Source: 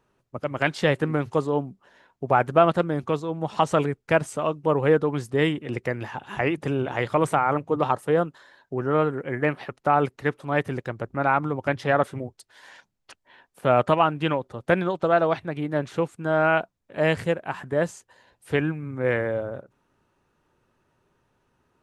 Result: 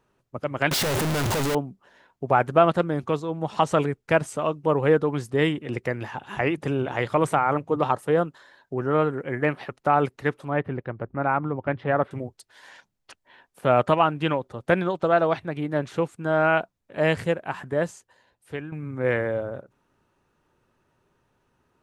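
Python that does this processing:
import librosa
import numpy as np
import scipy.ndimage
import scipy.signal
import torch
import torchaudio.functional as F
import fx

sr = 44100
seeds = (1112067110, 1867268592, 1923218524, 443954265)

y = fx.clip_1bit(x, sr, at=(0.71, 1.55))
y = fx.air_absorb(y, sr, metres=460.0, at=(10.48, 12.11))
y = fx.edit(y, sr, fx.fade_out_to(start_s=17.63, length_s=1.09, floor_db=-13.5), tone=tone)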